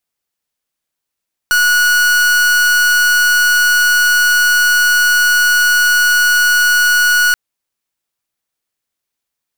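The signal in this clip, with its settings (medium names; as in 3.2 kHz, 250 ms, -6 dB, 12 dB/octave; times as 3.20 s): pulse 1.46 kHz, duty 43% -11 dBFS 5.83 s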